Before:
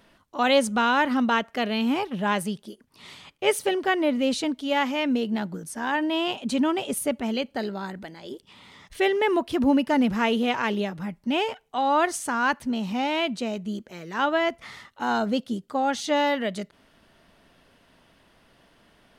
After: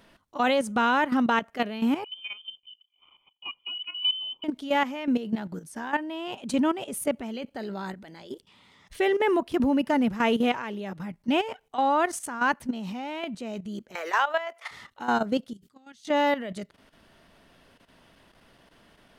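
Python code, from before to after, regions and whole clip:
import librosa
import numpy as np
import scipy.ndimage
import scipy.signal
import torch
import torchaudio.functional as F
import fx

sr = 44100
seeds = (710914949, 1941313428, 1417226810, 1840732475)

y = fx.chain(x, sr, fx.vowel_filter(vowel='u'),
    fx.tilt_eq(slope=-3.5),
    fx.freq_invert(carrier_hz=3300), at=(2.04, 4.44))
y = fx.chain(y, sr, fx.highpass(hz=580.0, slope=24),
    fx.band_squash(depth_pct=100), at=(13.95, 14.71))
y = fx.chain(y, sr, fx.highpass(hz=57.0, slope=12),
    fx.tone_stack(knobs='6-0-2'),
    fx.sustainer(db_per_s=120.0), at=(15.53, 16.05))
y = fx.dynamic_eq(y, sr, hz=4200.0, q=1.1, threshold_db=-41.0, ratio=4.0, max_db=-5)
y = fx.level_steps(y, sr, step_db=12)
y = F.gain(torch.from_numpy(y), 2.0).numpy()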